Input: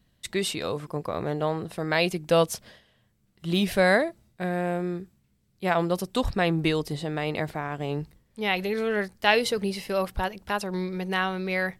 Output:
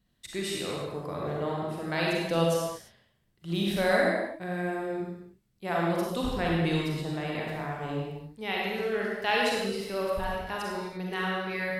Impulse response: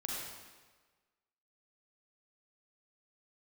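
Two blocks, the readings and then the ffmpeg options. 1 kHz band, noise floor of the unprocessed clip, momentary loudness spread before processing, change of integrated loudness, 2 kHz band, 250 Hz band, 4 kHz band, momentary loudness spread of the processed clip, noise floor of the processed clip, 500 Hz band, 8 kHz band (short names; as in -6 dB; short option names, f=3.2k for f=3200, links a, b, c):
-3.0 dB, -68 dBFS, 10 LU, -3.0 dB, -3.5 dB, -3.0 dB, -3.5 dB, 10 LU, -71 dBFS, -3.0 dB, -4.0 dB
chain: -filter_complex "[1:a]atrim=start_sample=2205,afade=t=out:st=0.4:d=0.01,atrim=end_sample=18081[a];[0:a][a]afir=irnorm=-1:irlink=0,volume=-5dB"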